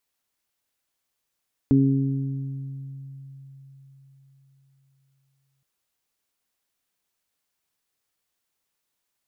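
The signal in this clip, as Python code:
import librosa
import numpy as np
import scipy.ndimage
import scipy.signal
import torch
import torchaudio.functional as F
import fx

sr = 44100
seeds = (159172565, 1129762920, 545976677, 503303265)

y = fx.additive(sr, length_s=3.92, hz=136.0, level_db=-18.5, upper_db=(4.5, -10.0), decay_s=4.47, upper_decays_s=(1.84, 1.62))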